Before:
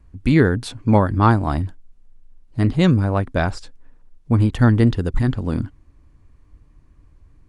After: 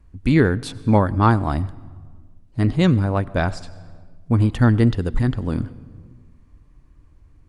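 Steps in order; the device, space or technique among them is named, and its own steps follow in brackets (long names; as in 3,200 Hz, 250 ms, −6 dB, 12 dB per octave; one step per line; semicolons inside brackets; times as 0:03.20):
compressed reverb return (on a send at −8 dB: convolution reverb RT60 1.1 s, pre-delay 82 ms + downward compressor 10 to 1, threshold −26 dBFS, peak gain reduction 16.5 dB)
on the sum: level −1 dB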